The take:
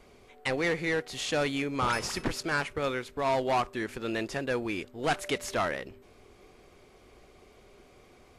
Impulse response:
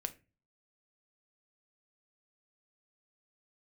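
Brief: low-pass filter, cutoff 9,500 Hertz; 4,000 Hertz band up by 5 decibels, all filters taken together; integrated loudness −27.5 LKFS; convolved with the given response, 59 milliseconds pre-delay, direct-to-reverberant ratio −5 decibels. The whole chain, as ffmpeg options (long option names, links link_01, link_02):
-filter_complex "[0:a]lowpass=9500,equalizer=frequency=4000:width_type=o:gain=6.5,asplit=2[link_01][link_02];[1:a]atrim=start_sample=2205,adelay=59[link_03];[link_02][link_03]afir=irnorm=-1:irlink=0,volume=6dB[link_04];[link_01][link_04]amix=inputs=2:normalize=0,volume=-4dB"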